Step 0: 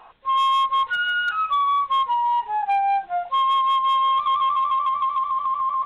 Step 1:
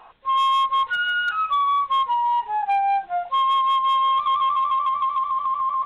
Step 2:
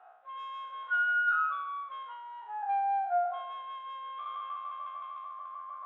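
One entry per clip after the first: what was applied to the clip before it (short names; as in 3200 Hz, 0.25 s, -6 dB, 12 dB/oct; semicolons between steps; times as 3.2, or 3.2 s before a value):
nothing audible
spectral trails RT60 0.89 s; double band-pass 1000 Hz, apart 0.91 oct; gain -3.5 dB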